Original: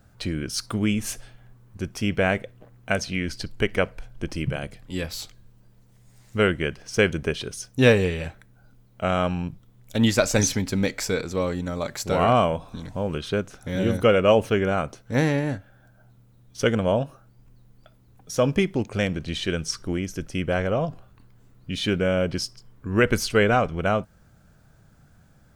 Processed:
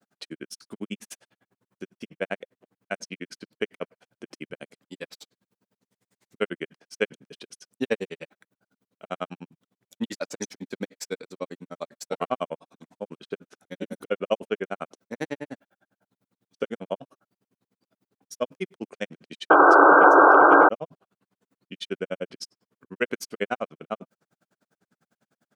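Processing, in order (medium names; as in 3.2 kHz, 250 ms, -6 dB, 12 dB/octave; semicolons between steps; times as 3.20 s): high-pass 200 Hz 24 dB/octave; peaking EQ 410 Hz +2 dB 0.28 oct; granulator 56 ms, grains 10 per s, spray 16 ms, pitch spread up and down by 0 st; painted sound noise, 19.50–20.69 s, 280–1600 Hz -10 dBFS; trim -3.5 dB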